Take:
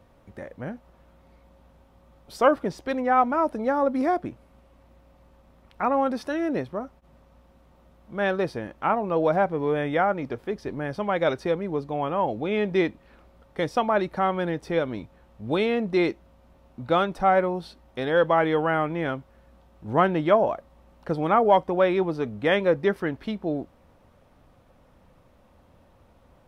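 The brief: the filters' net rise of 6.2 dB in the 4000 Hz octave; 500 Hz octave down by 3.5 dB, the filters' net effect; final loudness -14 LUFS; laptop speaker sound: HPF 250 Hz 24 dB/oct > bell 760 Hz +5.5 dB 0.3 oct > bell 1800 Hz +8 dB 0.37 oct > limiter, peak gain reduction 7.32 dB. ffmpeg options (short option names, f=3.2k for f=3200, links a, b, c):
-af "highpass=f=250:w=0.5412,highpass=f=250:w=1.3066,equalizer=f=500:t=o:g=-5.5,equalizer=f=760:t=o:w=0.3:g=5.5,equalizer=f=1.8k:t=o:w=0.37:g=8,equalizer=f=4k:t=o:g=7.5,volume=12.5dB,alimiter=limit=0dB:level=0:latency=1"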